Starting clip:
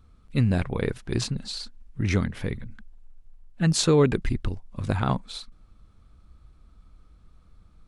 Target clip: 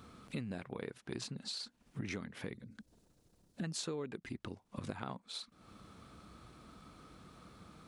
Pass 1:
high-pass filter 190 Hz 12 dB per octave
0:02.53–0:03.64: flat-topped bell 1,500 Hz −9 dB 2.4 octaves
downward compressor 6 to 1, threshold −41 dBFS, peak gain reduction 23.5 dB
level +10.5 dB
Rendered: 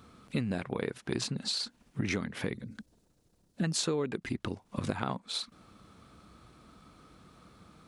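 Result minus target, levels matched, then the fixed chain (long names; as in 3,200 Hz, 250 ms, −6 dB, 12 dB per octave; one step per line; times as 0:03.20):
downward compressor: peak gain reduction −9 dB
high-pass filter 190 Hz 12 dB per octave
0:02.53–0:03.64: flat-topped bell 1,500 Hz −9 dB 2.4 octaves
downward compressor 6 to 1, threshold −52 dBFS, peak gain reduction 32.5 dB
level +10.5 dB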